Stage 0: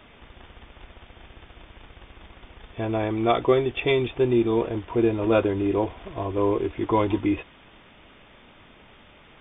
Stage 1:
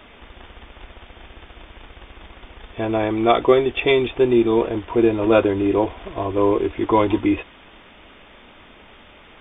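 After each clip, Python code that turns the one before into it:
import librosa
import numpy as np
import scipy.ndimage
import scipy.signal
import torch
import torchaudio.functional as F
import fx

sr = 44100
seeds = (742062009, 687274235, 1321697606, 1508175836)

y = fx.peak_eq(x, sr, hz=130.0, db=-7.5, octaves=0.86)
y = y * 10.0 ** (5.5 / 20.0)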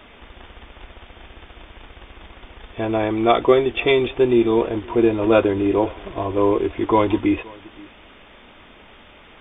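y = x + 10.0 ** (-23.5 / 20.0) * np.pad(x, (int(523 * sr / 1000.0), 0))[:len(x)]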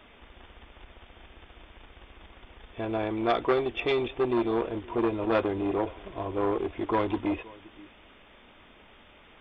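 y = fx.transformer_sat(x, sr, knee_hz=1000.0)
y = y * 10.0 ** (-8.0 / 20.0)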